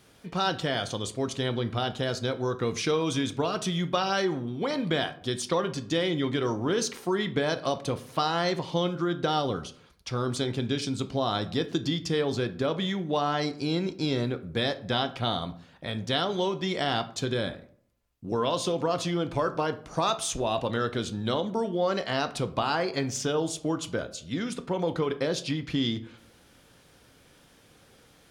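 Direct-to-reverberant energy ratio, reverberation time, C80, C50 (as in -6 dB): 9.0 dB, 0.60 s, 19.5 dB, 15.5 dB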